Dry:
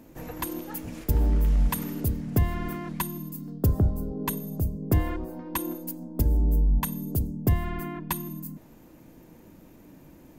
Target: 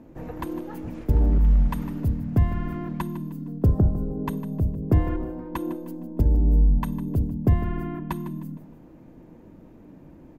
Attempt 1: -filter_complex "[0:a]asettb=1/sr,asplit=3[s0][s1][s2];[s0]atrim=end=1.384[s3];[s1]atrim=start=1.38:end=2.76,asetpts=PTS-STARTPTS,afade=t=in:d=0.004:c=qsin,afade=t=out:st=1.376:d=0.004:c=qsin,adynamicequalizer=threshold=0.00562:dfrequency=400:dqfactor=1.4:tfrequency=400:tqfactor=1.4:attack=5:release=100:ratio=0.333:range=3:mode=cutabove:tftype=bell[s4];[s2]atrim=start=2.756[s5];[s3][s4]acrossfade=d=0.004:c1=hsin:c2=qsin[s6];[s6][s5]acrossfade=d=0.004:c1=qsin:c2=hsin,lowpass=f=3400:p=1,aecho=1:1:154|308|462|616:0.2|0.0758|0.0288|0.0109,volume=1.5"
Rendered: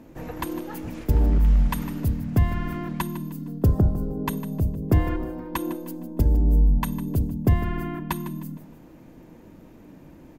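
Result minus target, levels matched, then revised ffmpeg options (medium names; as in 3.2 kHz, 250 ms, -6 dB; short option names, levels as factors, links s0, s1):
4 kHz band +8.0 dB
-filter_complex "[0:a]asettb=1/sr,asplit=3[s0][s1][s2];[s0]atrim=end=1.384[s3];[s1]atrim=start=1.38:end=2.76,asetpts=PTS-STARTPTS,afade=t=in:d=0.004:c=qsin,afade=t=out:st=1.376:d=0.004:c=qsin,adynamicequalizer=threshold=0.00562:dfrequency=400:dqfactor=1.4:tfrequency=400:tqfactor=1.4:attack=5:release=100:ratio=0.333:range=3:mode=cutabove:tftype=bell[s4];[s2]atrim=start=2.756[s5];[s3][s4]acrossfade=d=0.004:c1=hsin:c2=qsin[s6];[s6][s5]acrossfade=d=0.004:c1=qsin:c2=hsin,lowpass=f=960:p=1,aecho=1:1:154|308|462|616:0.2|0.0758|0.0288|0.0109,volume=1.5"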